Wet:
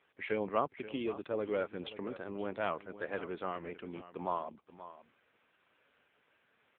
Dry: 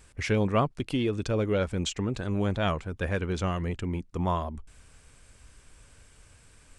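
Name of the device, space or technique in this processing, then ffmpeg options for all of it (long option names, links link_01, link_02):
satellite phone: -filter_complex "[0:a]asettb=1/sr,asplit=3[link_01][link_02][link_03];[link_01]atrim=end=2.134[link_04];[link_02]atrim=start=2.13:end=3.92,asetpts=PTS-STARTPTS,afade=type=in:duration=0.004:curve=qsin,afade=type=out:start_time=1.786:duration=0.004:curve=qsin,highshelf=frequency=6200:gain=-3[link_05];[link_03]atrim=start=3.916[link_06];[link_04][link_05]acrossfade=duration=0.004:curve1=hsin:curve2=qsin[link_07];[link_07][link_06]acrossfade=duration=0.004:curve1=qsin:curve2=hsin,highpass=340,lowpass=3400,aecho=1:1:529:0.2,volume=-4.5dB" -ar 8000 -c:a libopencore_amrnb -b:a 6700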